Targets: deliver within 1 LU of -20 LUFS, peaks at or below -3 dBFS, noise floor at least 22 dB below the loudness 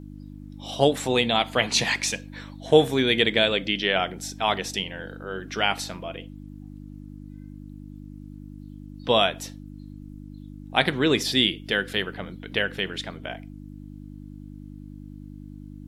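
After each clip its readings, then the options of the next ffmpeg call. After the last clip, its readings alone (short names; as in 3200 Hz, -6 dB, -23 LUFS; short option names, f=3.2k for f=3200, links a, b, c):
hum 50 Hz; harmonics up to 300 Hz; hum level -38 dBFS; loudness -23.5 LUFS; peak -2.5 dBFS; loudness target -20.0 LUFS
-> -af "bandreject=f=50:t=h:w=4,bandreject=f=100:t=h:w=4,bandreject=f=150:t=h:w=4,bandreject=f=200:t=h:w=4,bandreject=f=250:t=h:w=4,bandreject=f=300:t=h:w=4"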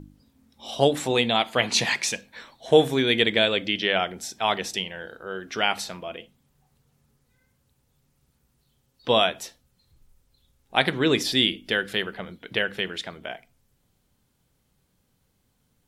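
hum none; loudness -23.5 LUFS; peak -2.5 dBFS; loudness target -20.0 LUFS
-> -af "volume=3.5dB,alimiter=limit=-3dB:level=0:latency=1"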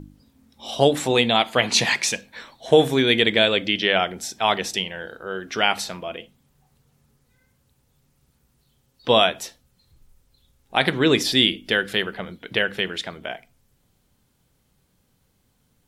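loudness -20.5 LUFS; peak -3.0 dBFS; noise floor -66 dBFS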